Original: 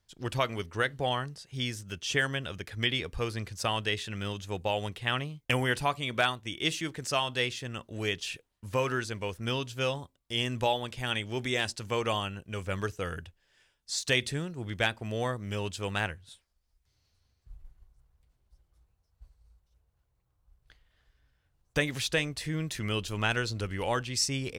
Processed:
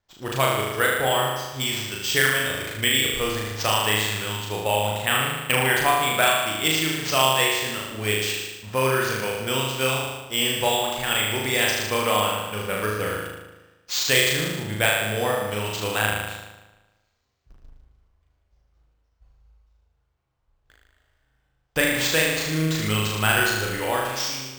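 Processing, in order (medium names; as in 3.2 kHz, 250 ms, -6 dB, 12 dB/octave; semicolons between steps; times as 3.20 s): fade out at the end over 0.88 s; bass shelf 250 Hz -8 dB; in parallel at -8 dB: word length cut 8-bit, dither none; on the sum: flutter echo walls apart 6.5 m, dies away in 1.2 s; careless resampling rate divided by 4×, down none, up hold; tape noise reduction on one side only decoder only; trim +3 dB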